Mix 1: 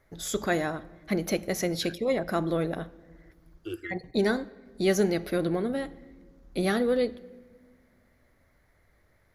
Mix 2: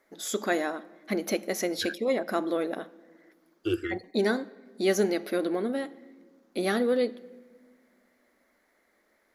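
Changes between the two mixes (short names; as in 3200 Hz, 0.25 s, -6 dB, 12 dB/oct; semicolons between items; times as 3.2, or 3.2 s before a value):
first voice: add brick-wall FIR high-pass 190 Hz; second voice +8.5 dB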